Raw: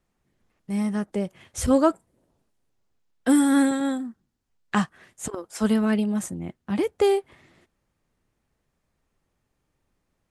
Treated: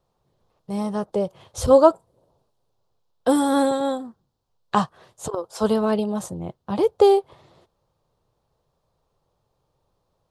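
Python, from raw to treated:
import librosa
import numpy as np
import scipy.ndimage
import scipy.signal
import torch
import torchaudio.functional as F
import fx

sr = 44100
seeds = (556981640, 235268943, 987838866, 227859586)

y = fx.graphic_eq(x, sr, hz=(125, 250, 500, 1000, 2000, 4000, 8000), db=(7, -7, 9, 9, -12, 8, -4))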